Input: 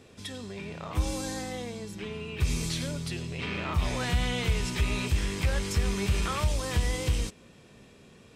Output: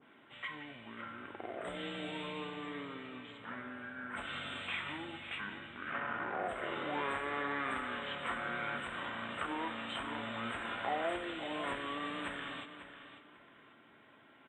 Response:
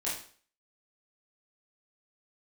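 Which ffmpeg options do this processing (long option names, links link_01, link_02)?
-filter_complex "[0:a]highpass=630,asetrate=25442,aresample=44100,asuperstop=centerf=5400:order=12:qfactor=1.3,asplit=2[link_01][link_02];[link_02]adelay=545,lowpass=frequency=3400:poles=1,volume=-11.5dB,asplit=2[link_03][link_04];[link_04]adelay=545,lowpass=frequency=3400:poles=1,volume=0.31,asplit=2[link_05][link_06];[link_06]adelay=545,lowpass=frequency=3400:poles=1,volume=0.31[link_07];[link_01][link_03][link_05][link_07]amix=inputs=4:normalize=0,asplit=2[link_08][link_09];[1:a]atrim=start_sample=2205,asetrate=24696,aresample=44100[link_10];[link_09][link_10]afir=irnorm=-1:irlink=0,volume=-21.5dB[link_11];[link_08][link_11]amix=inputs=2:normalize=0,adynamicequalizer=threshold=0.00708:dfrequency=1700:dqfactor=0.7:tfrequency=1700:tqfactor=0.7:attack=5:release=100:ratio=0.375:range=1.5:mode=cutabove:tftype=highshelf,volume=-2.5dB"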